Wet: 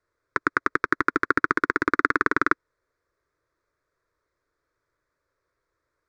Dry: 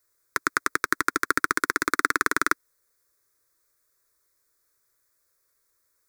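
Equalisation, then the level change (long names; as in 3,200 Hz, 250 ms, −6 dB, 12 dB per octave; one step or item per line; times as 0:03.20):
head-to-tape spacing loss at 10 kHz 25 dB
high-shelf EQ 4,400 Hz −8 dB
+6.0 dB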